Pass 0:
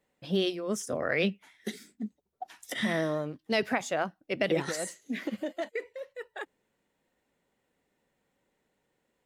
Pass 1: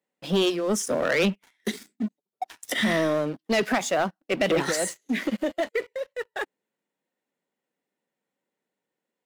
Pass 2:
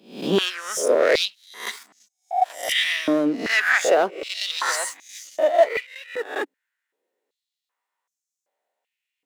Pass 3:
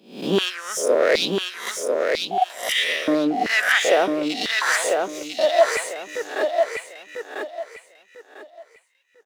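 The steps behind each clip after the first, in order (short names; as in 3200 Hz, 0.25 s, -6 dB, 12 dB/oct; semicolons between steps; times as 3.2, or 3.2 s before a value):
HPF 160 Hz 24 dB/oct; sample leveller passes 3; gain -2.5 dB
spectral swells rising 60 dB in 0.48 s; stepped high-pass 2.6 Hz 270–6200 Hz
feedback echo 0.997 s, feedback 26%, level -4 dB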